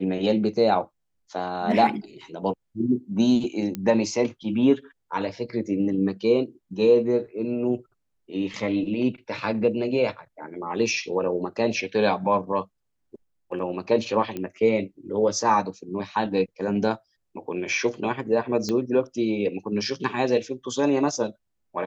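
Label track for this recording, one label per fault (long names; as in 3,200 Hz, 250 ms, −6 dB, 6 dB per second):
3.750000	3.750000	click −16 dBFS
14.370000	14.370000	click −18 dBFS
18.690000	18.690000	click −15 dBFS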